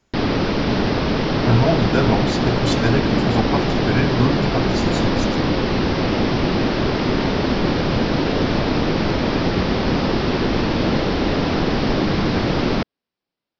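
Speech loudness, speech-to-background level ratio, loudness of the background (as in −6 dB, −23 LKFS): −22.5 LKFS, −3.0 dB, −19.5 LKFS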